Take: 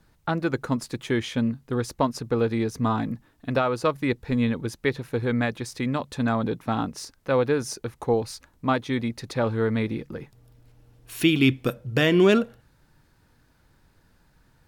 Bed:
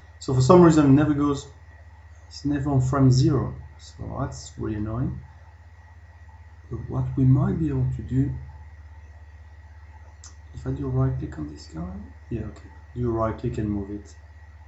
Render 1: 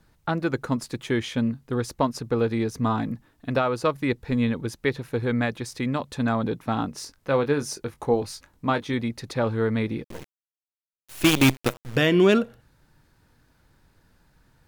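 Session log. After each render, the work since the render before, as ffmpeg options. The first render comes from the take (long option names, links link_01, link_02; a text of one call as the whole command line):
ffmpeg -i in.wav -filter_complex "[0:a]asettb=1/sr,asplit=3[link_01][link_02][link_03];[link_01]atrim=end=6.904[link_04];[link_02]atrim=start=6.9:end=8.94,asetpts=PTS-STARTPTS,afade=type=in:duration=0.004:curve=qsin,afade=type=out:start_time=2.036:duration=0.004:curve=qsin,asplit=2[link_05][link_06];[link_06]adelay=21,volume=-9.5dB[link_07];[link_05][link_07]amix=inputs=2:normalize=0,atrim=end_sample=89964[link_08];[link_03]atrim=start=8.936[link_09];[link_04][link_08]acrossfade=duration=0.004:curve1=hsin:curve2=qsin[link_10];[link_10][link_09]acrossfade=duration=0.004:curve1=qsin:curve2=hsin,asettb=1/sr,asplit=3[link_11][link_12][link_13];[link_11]atrim=end=10.044[link_14];[link_12]atrim=start=10.04:end=11.96,asetpts=PTS-STARTPTS,afade=type=in:duration=0.004:curve=qsin,afade=type=out:start_time=1.916:duration=0.004:curve=qsin,acrusher=bits=4:dc=4:mix=0:aa=0.000001[link_15];[link_13]atrim=start=11.956[link_16];[link_14][link_15]acrossfade=duration=0.004:curve1=hsin:curve2=qsin[link_17];[link_17][link_16]acrossfade=duration=0.004:curve1=qsin:curve2=hsin" out.wav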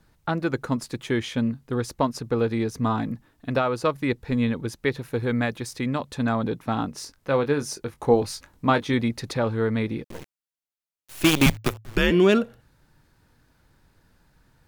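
ffmpeg -i in.wav -filter_complex "[0:a]asettb=1/sr,asplit=3[link_01][link_02][link_03];[link_01]atrim=end=4.954[link_04];[link_02]atrim=start=4.95:end=5.76,asetpts=PTS-STARTPTS,afade=type=in:duration=0.004:curve=qsin,afade=type=out:start_time=0.806:duration=0.004:curve=qsin,highshelf=frequency=11000:gain=6[link_05];[link_03]atrim=start=5.756[link_06];[link_04][link_05]acrossfade=duration=0.004:curve1=hsin:curve2=qsin[link_07];[link_07][link_06]acrossfade=duration=0.004:curve1=qsin:curve2=hsin,asettb=1/sr,asplit=3[link_08][link_09][link_10];[link_08]atrim=end=11.464[link_11];[link_09]atrim=start=11.46:end=12.11,asetpts=PTS-STARTPTS,afade=type=in:duration=0.004:curve=qsin,afade=type=out:start_time=0.646:duration=0.004:curve=qsin,afreqshift=-110[link_12];[link_10]atrim=start=12.106[link_13];[link_11][link_12]acrossfade=duration=0.004:curve1=hsin:curve2=qsin[link_14];[link_14][link_13]acrossfade=duration=0.004:curve1=qsin:curve2=hsin,asplit=3[link_15][link_16][link_17];[link_15]atrim=end=8.042[link_18];[link_16]atrim=start=8.038:end=9.372,asetpts=PTS-STARTPTS,volume=3.5dB[link_19];[link_17]atrim=start=9.368[link_20];[link_18][link_19]acrossfade=duration=0.004:curve1=hsin:curve2=hsin[link_21];[link_21][link_20]acrossfade=duration=0.004:curve1=hsin:curve2=hsin" out.wav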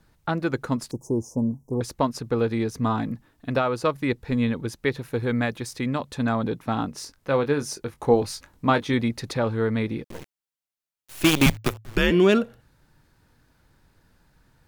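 ffmpeg -i in.wav -filter_complex "[0:a]asettb=1/sr,asplit=3[link_01][link_02][link_03];[link_01]atrim=end=0.914[link_04];[link_02]atrim=start=0.91:end=1.81,asetpts=PTS-STARTPTS,afade=type=in:duration=0.004:curve=qsin,afade=type=out:start_time=0.896:duration=0.004:curve=qsin,asuperstop=centerf=2400:order=20:qfactor=0.55[link_05];[link_03]atrim=start=1.806[link_06];[link_04][link_05]acrossfade=duration=0.004:curve1=hsin:curve2=qsin[link_07];[link_07][link_06]acrossfade=duration=0.004:curve1=qsin:curve2=hsin" out.wav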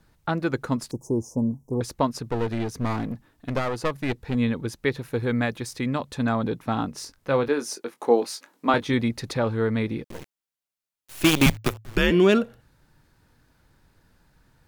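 ffmpeg -i in.wav -filter_complex "[0:a]asettb=1/sr,asplit=3[link_01][link_02][link_03];[link_01]atrim=end=2.294[link_04];[link_02]atrim=start=2.29:end=4.35,asetpts=PTS-STARTPTS,afade=type=in:duration=0.004:curve=qsin,afade=type=out:start_time=2.056:duration=0.004:curve=qsin,aeval=exprs='clip(val(0),-1,0.0316)':channel_layout=same[link_05];[link_03]atrim=start=4.346[link_06];[link_04][link_05]acrossfade=duration=0.004:curve1=hsin:curve2=qsin[link_07];[link_07][link_06]acrossfade=duration=0.004:curve1=qsin:curve2=hsin,asettb=1/sr,asplit=3[link_08][link_09][link_10];[link_08]atrim=end=7.484[link_11];[link_09]atrim=start=7.48:end=8.74,asetpts=PTS-STARTPTS,afade=type=in:duration=0.004:curve=qsin,afade=type=out:start_time=1.256:duration=0.004:curve=qsin,highpass=frequency=240:width=0.5412,highpass=frequency=240:width=1.3066[link_12];[link_10]atrim=start=8.736[link_13];[link_11][link_12]acrossfade=duration=0.004:curve1=hsin:curve2=qsin[link_14];[link_14][link_13]acrossfade=duration=0.004:curve1=qsin:curve2=hsin" out.wav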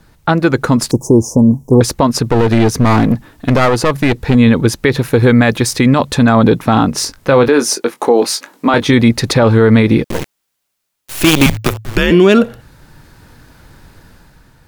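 ffmpeg -i in.wav -af "dynaudnorm=framelen=110:gausssize=11:maxgain=6.5dB,alimiter=level_in=13dB:limit=-1dB:release=50:level=0:latency=1" out.wav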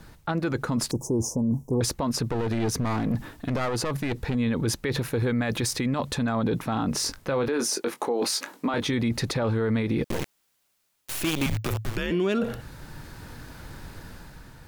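ffmpeg -i in.wav -af "areverse,acompressor=threshold=-16dB:ratio=10,areverse,alimiter=limit=-18dB:level=0:latency=1:release=54" out.wav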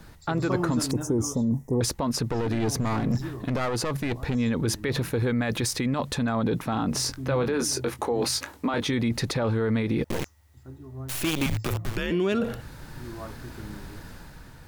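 ffmpeg -i in.wav -i bed.wav -filter_complex "[1:a]volume=-15dB[link_01];[0:a][link_01]amix=inputs=2:normalize=0" out.wav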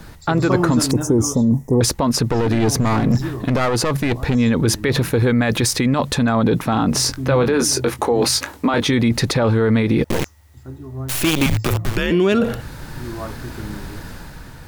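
ffmpeg -i in.wav -af "volume=9dB" out.wav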